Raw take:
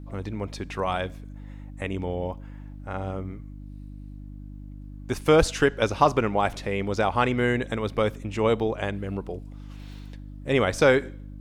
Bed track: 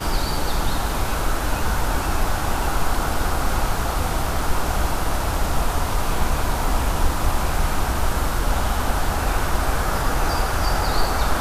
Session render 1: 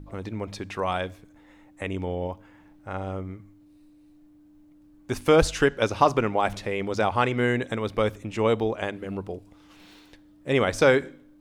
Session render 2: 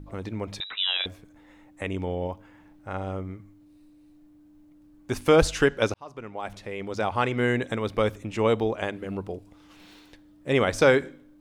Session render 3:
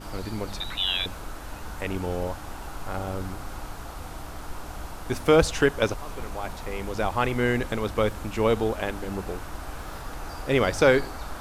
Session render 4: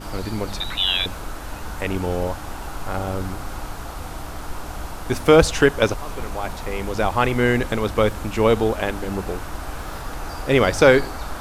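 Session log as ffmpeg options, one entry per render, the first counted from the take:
-af "bandreject=f=50:t=h:w=4,bandreject=f=100:t=h:w=4,bandreject=f=150:t=h:w=4,bandreject=f=200:t=h:w=4,bandreject=f=250:t=h:w=4"
-filter_complex "[0:a]asettb=1/sr,asplit=3[s0][s1][s2];[s0]atrim=end=0.604[s3];[s1]atrim=start=0.6:end=1.06,asetpts=PTS-STARTPTS,afade=t=in:d=0.004:c=qsin,afade=t=out:st=0.456:d=0.004:c=qsin,lowpass=f=3400:t=q:w=0.5098,lowpass=f=3400:t=q:w=0.6013,lowpass=f=3400:t=q:w=0.9,lowpass=f=3400:t=q:w=2.563,afreqshift=-4000[s4];[s2]atrim=start=1.056[s5];[s3][s4]acrossfade=d=0.004:c1=hsin:c2=qsin[s6];[s6][s5]acrossfade=d=0.004:c1=qsin:c2=hsin,asplit=2[s7][s8];[s7]atrim=end=5.94,asetpts=PTS-STARTPTS,afade=t=out:st=5.936:d=0.004:c=hsin[s9];[s8]atrim=start=5.94,asetpts=PTS-STARTPTS,afade=t=in:d=1.61[s10];[s9][s10]concat=n=2:v=0:a=1"
-filter_complex "[1:a]volume=0.168[s0];[0:a][s0]amix=inputs=2:normalize=0"
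-af "volume=1.88"

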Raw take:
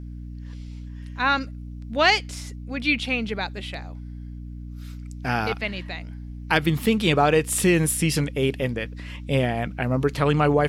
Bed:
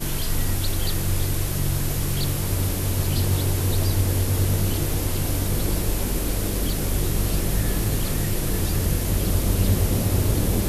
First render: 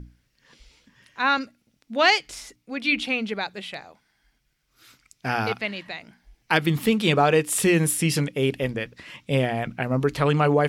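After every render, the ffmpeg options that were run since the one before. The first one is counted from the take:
-af "bandreject=f=60:t=h:w=6,bandreject=f=120:t=h:w=6,bandreject=f=180:t=h:w=6,bandreject=f=240:t=h:w=6,bandreject=f=300:t=h:w=6"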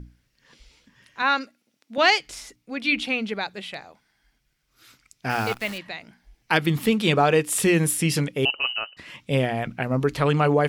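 -filter_complex "[0:a]asettb=1/sr,asplit=3[s0][s1][s2];[s0]atrim=end=1.224[s3];[s1]atrim=start=1.22:end=1.98,asetpts=PTS-STARTPTS,afade=t=in:d=0.004:c=qsin,afade=t=out:st=0.756:d=0.004:c=qsin,highpass=280[s4];[s2]atrim=start=1.976[s5];[s3][s4]acrossfade=d=0.004:c1=hsin:c2=qsin[s6];[s6][s5]acrossfade=d=0.004:c1=qsin:c2=hsin,asplit=3[s7][s8][s9];[s7]afade=t=out:st=5.29:d=0.02[s10];[s8]acrusher=bits=7:dc=4:mix=0:aa=0.000001,afade=t=in:st=5.29:d=0.02,afade=t=out:st=5.77:d=0.02[s11];[s9]afade=t=in:st=5.77:d=0.02[s12];[s10][s11][s12]amix=inputs=3:normalize=0,asettb=1/sr,asplit=3[s13][s14][s15];[s13]atrim=end=8.454[s16];[s14]atrim=start=8.45:end=8.97,asetpts=PTS-STARTPTS,afade=t=in:d=0.004:c=qsin,afade=t=out:st=0.516:d=0.004:c=qsin,lowpass=f=2600:t=q:w=0.5098,lowpass=f=2600:t=q:w=0.6013,lowpass=f=2600:t=q:w=0.9,lowpass=f=2600:t=q:w=2.563,afreqshift=-3100[s17];[s15]atrim=start=8.966[s18];[s16][s17]acrossfade=d=0.004:c1=hsin:c2=qsin[s19];[s19][s18]acrossfade=d=0.004:c1=qsin:c2=hsin"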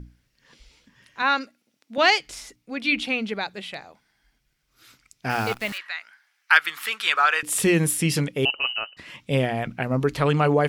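-filter_complex "[0:a]asettb=1/sr,asplit=3[s0][s1][s2];[s0]atrim=end=5.724[s3];[s1]atrim=start=5.72:end=7.43,asetpts=PTS-STARTPTS,afade=t=in:d=0.004:c=qsin,afade=t=out:st=1.706:d=0.004:c=qsin,highpass=f=1400:t=q:w=3[s4];[s2]atrim=start=7.426[s5];[s3][s4]acrossfade=d=0.004:c1=hsin:c2=qsin[s6];[s6][s5]acrossfade=d=0.004:c1=qsin:c2=hsin"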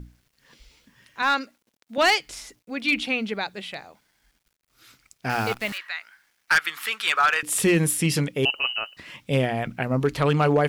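-af "asoftclip=type=hard:threshold=0.237,acrusher=bits=10:mix=0:aa=0.000001"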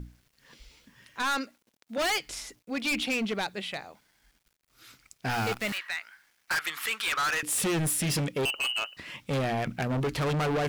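-af "volume=18.8,asoftclip=hard,volume=0.0531"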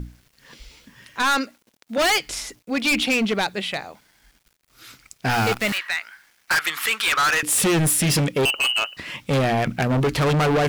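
-af "volume=2.66"

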